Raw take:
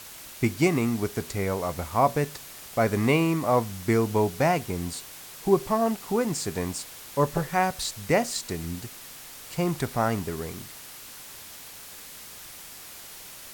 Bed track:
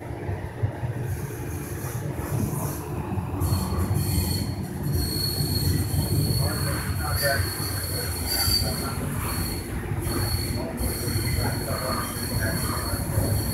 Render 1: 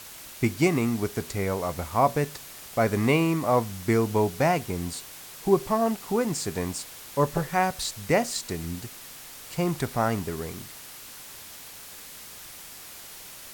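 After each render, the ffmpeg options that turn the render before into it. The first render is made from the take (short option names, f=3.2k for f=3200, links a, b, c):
-af anull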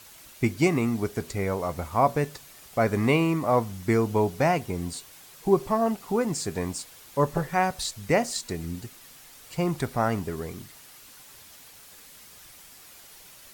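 -af "afftdn=nr=7:nf=-44"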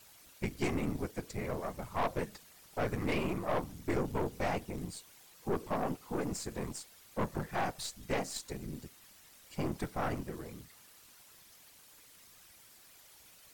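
-af "afftfilt=real='hypot(re,im)*cos(2*PI*random(0))':imag='hypot(re,im)*sin(2*PI*random(1))':win_size=512:overlap=0.75,aeval=exprs='(tanh(22.4*val(0)+0.65)-tanh(0.65))/22.4':c=same"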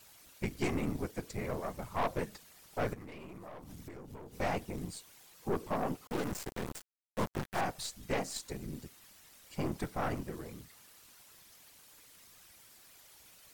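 -filter_complex "[0:a]asettb=1/sr,asplit=3[a][b][c];[a]atrim=end=2.934[d];[b]atrim=start=2.93:end=4.39,asetpts=PTS-STARTPTS,afade=t=in:d=0.004:c=qsin,afade=t=out:st=1.456:d=0.004:c=qsin,acompressor=threshold=-43dB:ratio=16:attack=3.2:release=140:knee=1:detection=peak[e];[c]atrim=start=4.386[f];[d][e]acrossfade=d=0.004:c1=hsin:c2=qsin[g];[g][f]acrossfade=d=0.004:c1=qsin:c2=hsin,asettb=1/sr,asplit=3[h][i][j];[h]atrim=end=6.074[k];[i]atrim=start=6.07:end=7.61,asetpts=PTS-STARTPTS,afade=t=in:d=0.004:c=qsin,afade=t=out:st=1.536:d=0.004:c=qsin,acrusher=bits=5:mix=0:aa=0.5[l];[j]atrim=start=7.606[m];[k][l]acrossfade=d=0.004:c1=hsin:c2=qsin[n];[n][m]acrossfade=d=0.004:c1=qsin:c2=hsin"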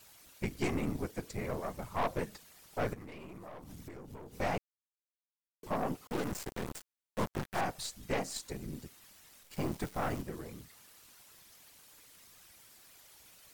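-filter_complex "[0:a]asettb=1/sr,asplit=3[a][b][c];[a]atrim=end=9.434[d];[b]atrim=start=9.43:end=10.22,asetpts=PTS-STARTPTS,afade=t=in:d=0.004:c=qsin,afade=t=out:st=0.786:d=0.004:c=qsin,acrusher=bits=9:dc=4:mix=0:aa=0.000001[e];[c]atrim=start=10.216[f];[d][e]acrossfade=d=0.004:c1=hsin:c2=qsin[g];[g][f]acrossfade=d=0.004:c1=qsin:c2=hsin,asplit=3[h][i][j];[h]atrim=end=4.58,asetpts=PTS-STARTPTS,afade=t=out:st=4.576:d=0.004:c=hsin[k];[i]atrim=start=4.58:end=5.63,asetpts=PTS-STARTPTS,volume=0[l];[j]atrim=start=5.63,asetpts=PTS-STARTPTS,afade=t=in:d=0.004:c=hsin[m];[k][l][m]concat=n=3:v=0:a=1"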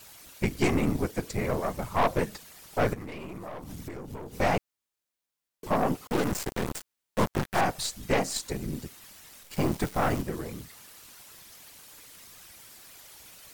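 -af "volume=8.5dB"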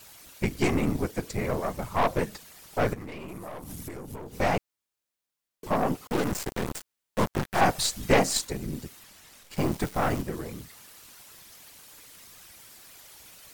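-filter_complex "[0:a]asettb=1/sr,asplit=3[a][b][c];[a]atrim=end=3.284[d];[b]atrim=start=3.28:end=4.16,asetpts=PTS-STARTPTS,afade=t=in:d=0.004:c=qsin,afade=t=out:st=0.876:d=0.004:c=qsin,equalizer=f=11k:w=0.93:g=10.5[e];[c]atrim=start=4.156[f];[d][e]acrossfade=d=0.004:c1=hsin:c2=qsin[g];[g][f]acrossfade=d=0.004:c1=qsin:c2=hsin,asettb=1/sr,asplit=3[h][i][j];[h]atrim=end=7.614[k];[i]atrim=start=7.61:end=8.45,asetpts=PTS-STARTPTS,afade=t=in:d=0.004:c=qsin,afade=t=out:st=0.836:d=0.004:c=qsin,acontrast=30[l];[j]atrim=start=8.446[m];[k][l]acrossfade=d=0.004:c1=hsin:c2=qsin[n];[n][m]acrossfade=d=0.004:c1=qsin:c2=hsin,asettb=1/sr,asplit=3[o][p][q];[o]atrim=end=9.034[r];[p]atrim=start=9.03:end=9.58,asetpts=PTS-STARTPTS,afade=t=in:d=0.004:c=qsin,afade=t=out:st=0.546:d=0.004:c=qsin,highshelf=f=10k:g=-6.5[s];[q]atrim=start=9.576[t];[r][s]acrossfade=d=0.004:c1=hsin:c2=qsin[u];[u][t]acrossfade=d=0.004:c1=qsin:c2=hsin"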